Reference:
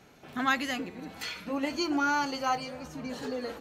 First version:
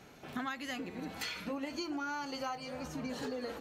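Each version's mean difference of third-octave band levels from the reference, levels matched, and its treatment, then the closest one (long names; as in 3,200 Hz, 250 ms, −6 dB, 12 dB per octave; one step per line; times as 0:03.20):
4.5 dB: downward compressor 12 to 1, threshold −36 dBFS, peak gain reduction 15.5 dB
level +1 dB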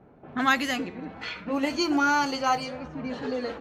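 2.5 dB: low-pass that shuts in the quiet parts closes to 790 Hz, open at −27 dBFS
level +4.5 dB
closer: second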